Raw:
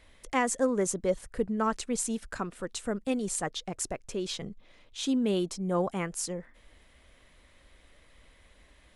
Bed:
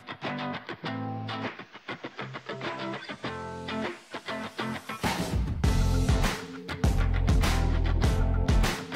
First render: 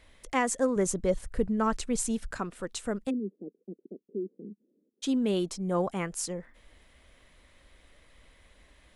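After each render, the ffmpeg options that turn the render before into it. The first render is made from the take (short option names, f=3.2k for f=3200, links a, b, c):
-filter_complex "[0:a]asettb=1/sr,asplit=3[a][b][c];[a]atrim=end=0.764[d];[b]atrim=start=0.76:end=2.31,asetpts=PTS-STARTPTS,afade=t=in:d=0.004:c=qsin,afade=t=out:st=1.546:d=0.004:c=qsin,lowshelf=f=120:g=10.5[e];[c]atrim=start=2.306[f];[d][e]acrossfade=d=0.004:c1=hsin:c2=qsin[g];[g][f]acrossfade=d=0.004:c1=qsin:c2=hsin,asplit=3[h][i][j];[h]afade=t=out:st=3.09:d=0.02[k];[i]asuperpass=centerf=290:order=8:qfactor=1.2,afade=t=in:st=3.09:d=0.02,afade=t=out:st=5.02:d=0.02[l];[j]afade=t=in:st=5.02:d=0.02[m];[k][l][m]amix=inputs=3:normalize=0"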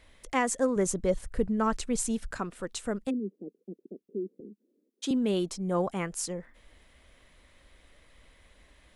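-filter_complex "[0:a]asettb=1/sr,asplit=3[a][b][c];[a]atrim=end=4.404[d];[b]atrim=start=4.4:end=5.11,asetpts=PTS-STARTPTS,afade=t=in:d=0.004:c=qsin,afade=t=out:st=0.706:d=0.004:c=qsin,highpass=f=230:w=0.5412,highpass=f=230:w=1.3066[e];[c]atrim=start=5.106[f];[d][e]acrossfade=d=0.004:c1=hsin:c2=qsin[g];[g][f]acrossfade=d=0.004:c1=qsin:c2=hsin"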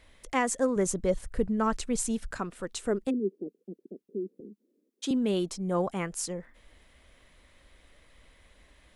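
-filter_complex "[0:a]asettb=1/sr,asplit=3[a][b][c];[a]atrim=end=2.774[d];[b]atrim=start=2.77:end=3.47,asetpts=PTS-STARTPTS,afade=t=in:d=0.004:c=qsin,afade=t=out:st=0.696:d=0.004:c=qsin,equalizer=f=380:w=3.3:g=10.5[e];[c]atrim=start=3.466[f];[d][e]acrossfade=d=0.004:c1=hsin:c2=qsin[g];[g][f]acrossfade=d=0.004:c1=qsin:c2=hsin"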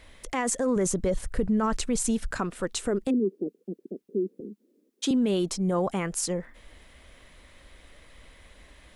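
-af "acontrast=64,alimiter=limit=-18dB:level=0:latency=1:release=31"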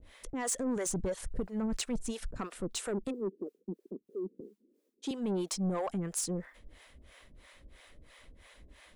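-filter_complex "[0:a]acrossover=split=460[a][b];[a]aeval=exprs='val(0)*(1-1/2+1/2*cos(2*PI*3*n/s))':c=same[c];[b]aeval=exprs='val(0)*(1-1/2-1/2*cos(2*PI*3*n/s))':c=same[d];[c][d]amix=inputs=2:normalize=0,asoftclip=type=tanh:threshold=-27dB"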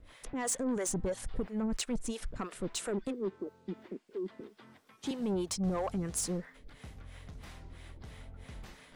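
-filter_complex "[1:a]volume=-24.5dB[a];[0:a][a]amix=inputs=2:normalize=0"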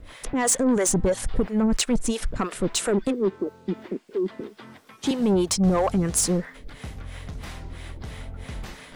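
-af "volume=12dB"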